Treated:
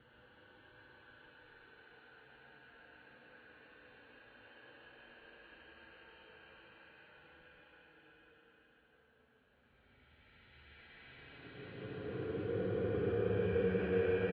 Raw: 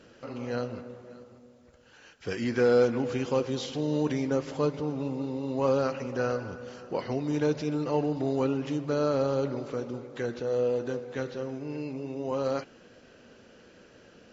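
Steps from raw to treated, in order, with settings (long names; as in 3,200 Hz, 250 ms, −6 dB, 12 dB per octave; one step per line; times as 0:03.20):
extreme stretch with random phases 35×, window 0.10 s, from 0:01.91
Butterworth low-pass 4,200 Hz 96 dB per octave
high-shelf EQ 2,700 Hz −12 dB
on a send: multi-tap delay 68/70/111/150/178/547 ms −11/−14/−7/−4.5/−11/−18.5 dB
on the sum: spring reverb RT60 1.2 s, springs 38/54 ms, chirp 60 ms, DRR 6.5 dB
level −6 dB
Ogg Vorbis 64 kbit/s 16,000 Hz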